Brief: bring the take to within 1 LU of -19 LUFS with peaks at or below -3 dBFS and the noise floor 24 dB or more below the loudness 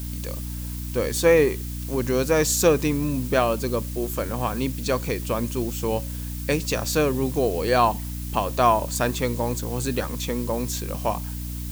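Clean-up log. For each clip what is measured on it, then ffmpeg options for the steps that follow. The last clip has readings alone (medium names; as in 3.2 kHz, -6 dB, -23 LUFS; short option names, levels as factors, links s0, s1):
hum 60 Hz; highest harmonic 300 Hz; hum level -29 dBFS; noise floor -32 dBFS; noise floor target -48 dBFS; loudness -24.0 LUFS; peak level -5.5 dBFS; loudness target -19.0 LUFS
-> -af "bandreject=f=60:t=h:w=6,bandreject=f=120:t=h:w=6,bandreject=f=180:t=h:w=6,bandreject=f=240:t=h:w=6,bandreject=f=300:t=h:w=6"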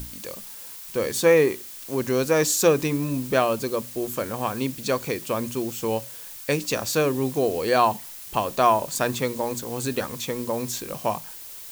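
hum not found; noise floor -40 dBFS; noise floor target -49 dBFS
-> -af "afftdn=nr=9:nf=-40"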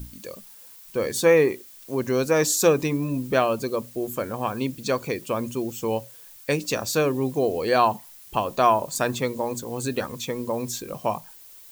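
noise floor -47 dBFS; noise floor target -49 dBFS
-> -af "afftdn=nr=6:nf=-47"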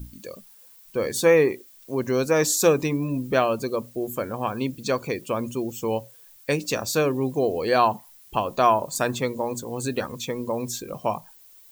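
noise floor -51 dBFS; loudness -24.5 LUFS; peak level -6.5 dBFS; loudness target -19.0 LUFS
-> -af "volume=1.88,alimiter=limit=0.708:level=0:latency=1"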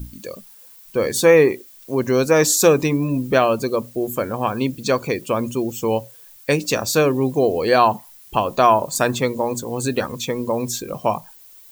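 loudness -19.5 LUFS; peak level -3.0 dBFS; noise floor -46 dBFS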